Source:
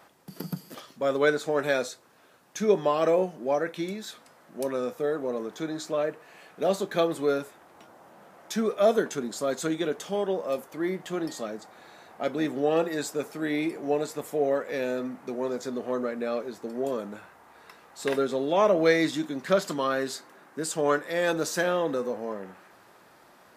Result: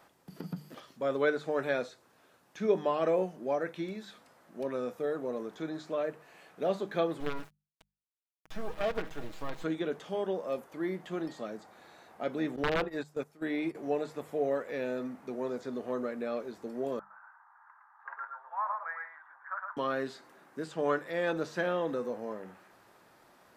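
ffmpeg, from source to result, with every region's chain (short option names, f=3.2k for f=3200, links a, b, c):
-filter_complex "[0:a]asettb=1/sr,asplit=3[a][b][c];[a]atrim=end=7.204[d];[b]atrim=start=7.2:end=9.64,asetpts=PTS-STARTPTS,afade=t=in:d=0.004:c=qsin,afade=t=out:st=2.436:d=0.004:c=qsin,acrusher=bits=4:dc=4:mix=0:aa=0.000001,aecho=1:1:6.3:0.49,atrim=end_sample=107604,acompressor=threshold=-27dB:ratio=2:attack=3.2:release=140:knee=1:detection=peak[e];[c]atrim=start=9.636[f];[d][e]acrossfade=d=0.004:c1=hsin:c2=qsin[g];[g][f]acrossfade=d=0.004:c1=qsin:c2=hsin,asettb=1/sr,asplit=3[h][i][j];[h]atrim=end=12.564[k];[i]atrim=start=12.56:end=13.75,asetpts=PTS-STARTPTS,afade=t=in:d=0.004:c=qsin,afade=t=out:st=1.186:d=0.004:c=qsin,agate=range=-16dB:threshold=-32dB:ratio=16:release=100:detection=peak,aeval=exprs='(mod(6.31*val(0)+1,2)-1)/6.31':c=same[l];[j]atrim=start=13.746[m];[k][l]acrossfade=d=0.004:c1=hsin:c2=qsin[n];[n][m]acrossfade=d=0.004:c1=qsin:c2=hsin,asettb=1/sr,asplit=3[o][p][q];[o]atrim=end=16.994[r];[p]atrim=start=16.99:end=19.77,asetpts=PTS-STARTPTS,afade=t=in:d=0.004:c=qsin,afade=t=out:st=2.776:d=0.004:c=qsin,asuperpass=centerf=1200:order=8:qfactor=1.4,aecho=1:1:112:0.668,atrim=end_sample=122598[s];[q]atrim=start=19.766[t];[r][s]acrossfade=d=0.004:c1=hsin:c2=qsin[u];[u][t]acrossfade=d=0.004:c1=qsin:c2=hsin,bandreject=f=50:t=h:w=6,bandreject=f=100:t=h:w=6,bandreject=f=150:t=h:w=6,bandreject=f=200:t=h:w=6,acrossover=split=3800[v][w];[w]acompressor=threshold=-56dB:ratio=4:attack=1:release=60[x];[v][x]amix=inputs=2:normalize=0,lowshelf=f=120:g=5.5,volume=-5.5dB"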